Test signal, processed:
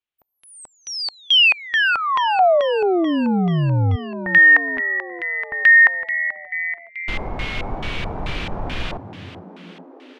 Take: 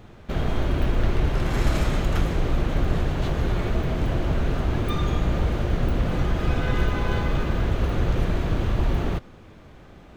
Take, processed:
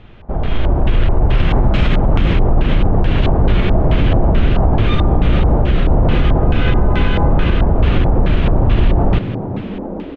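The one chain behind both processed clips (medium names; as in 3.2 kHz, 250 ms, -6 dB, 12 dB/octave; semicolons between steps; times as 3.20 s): bass shelf 75 Hz +8.5 dB; peak limiter -14 dBFS; level rider gain up to 7.5 dB; frequency-shifting echo 418 ms, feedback 64%, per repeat +83 Hz, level -13.5 dB; LFO low-pass square 2.3 Hz 830–3000 Hz; trim +1.5 dB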